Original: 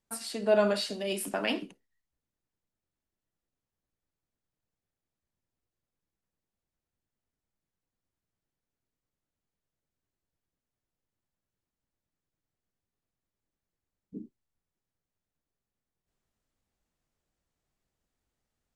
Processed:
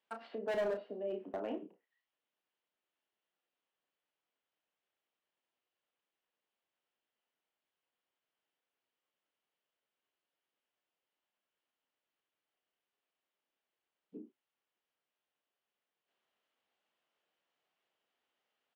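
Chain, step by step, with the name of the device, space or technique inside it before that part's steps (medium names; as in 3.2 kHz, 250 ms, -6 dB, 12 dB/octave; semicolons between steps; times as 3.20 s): low-pass that closes with the level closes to 420 Hz, closed at -33.5 dBFS; megaphone (band-pass 500–3200 Hz; peaking EQ 3 kHz +8 dB 0.41 oct; hard clipper -34.5 dBFS, distortion -8 dB; doubling 32 ms -8 dB); trim +3 dB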